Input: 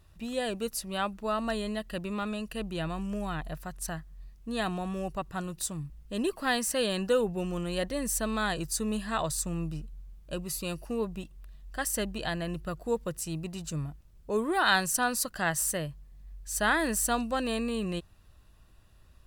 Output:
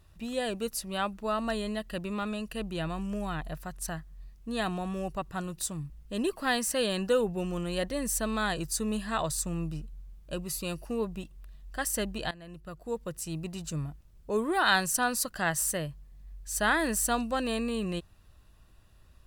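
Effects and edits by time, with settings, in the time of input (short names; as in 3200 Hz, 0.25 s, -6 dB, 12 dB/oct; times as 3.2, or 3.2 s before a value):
12.31–13.45 fade in, from -18.5 dB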